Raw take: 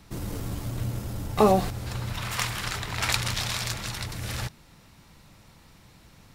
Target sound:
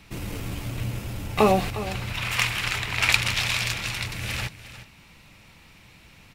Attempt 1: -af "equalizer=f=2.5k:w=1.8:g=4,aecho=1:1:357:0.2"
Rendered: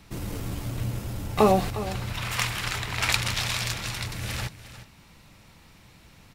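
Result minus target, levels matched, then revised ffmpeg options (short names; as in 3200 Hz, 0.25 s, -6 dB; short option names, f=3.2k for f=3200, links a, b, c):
2000 Hz band -3.0 dB
-af "equalizer=f=2.5k:w=1.8:g=11,aecho=1:1:357:0.2"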